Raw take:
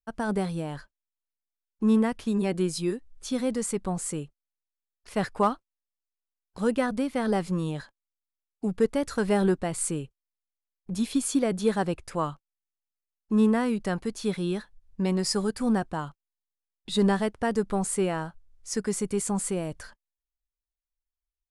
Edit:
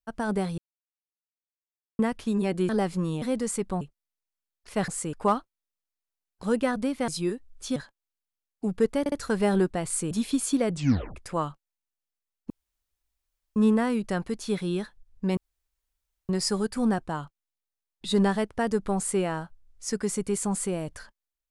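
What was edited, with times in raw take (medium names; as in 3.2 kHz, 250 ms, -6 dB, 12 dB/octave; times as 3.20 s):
0.58–1.99 s: mute
2.69–3.37 s: swap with 7.23–7.76 s
3.96–4.21 s: move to 5.28 s
9.00 s: stutter 0.06 s, 3 plays
9.99–10.93 s: delete
11.52 s: tape stop 0.46 s
13.32 s: insert room tone 1.06 s
15.13 s: insert room tone 0.92 s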